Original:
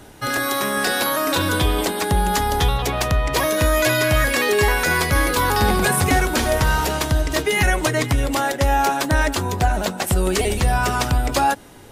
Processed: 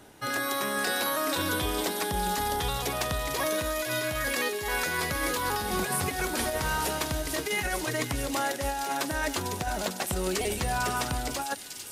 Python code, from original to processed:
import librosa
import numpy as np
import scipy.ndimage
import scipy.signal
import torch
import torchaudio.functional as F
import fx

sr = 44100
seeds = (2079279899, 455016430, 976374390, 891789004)

y = fx.low_shelf(x, sr, hz=92.0, db=-10.5)
y = fx.over_compress(y, sr, threshold_db=-20.0, ratio=-0.5)
y = fx.echo_wet_highpass(y, sr, ms=450, feedback_pct=82, hz=4000.0, wet_db=-5.5)
y = y * librosa.db_to_amplitude(-8.5)